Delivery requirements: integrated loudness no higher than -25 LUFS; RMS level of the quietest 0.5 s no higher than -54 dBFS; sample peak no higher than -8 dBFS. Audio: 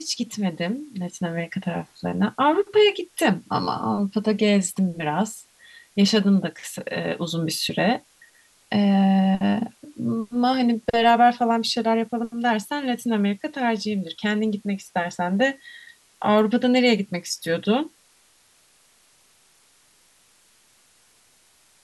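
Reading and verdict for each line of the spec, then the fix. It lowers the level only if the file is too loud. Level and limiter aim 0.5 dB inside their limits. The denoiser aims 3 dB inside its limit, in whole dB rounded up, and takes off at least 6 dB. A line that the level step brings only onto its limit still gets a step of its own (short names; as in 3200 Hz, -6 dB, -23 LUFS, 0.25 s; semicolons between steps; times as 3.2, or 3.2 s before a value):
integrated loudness -22.5 LUFS: fail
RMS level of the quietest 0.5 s -59 dBFS: OK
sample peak -6.0 dBFS: fail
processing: gain -3 dB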